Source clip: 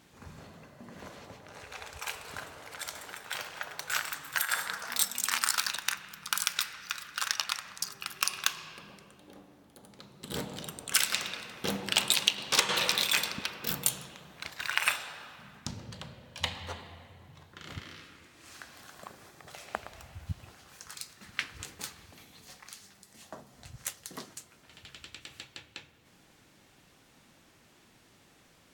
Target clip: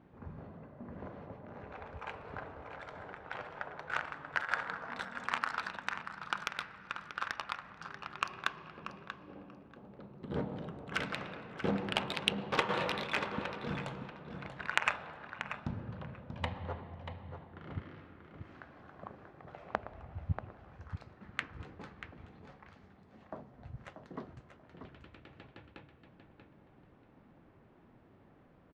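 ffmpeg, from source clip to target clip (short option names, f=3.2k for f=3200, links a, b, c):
-af "lowpass=f=3.2k:p=1,aecho=1:1:636|1272|1908:0.398|0.0796|0.0159,adynamicsmooth=sensitivity=0.5:basefreq=1.3k,volume=2.5dB"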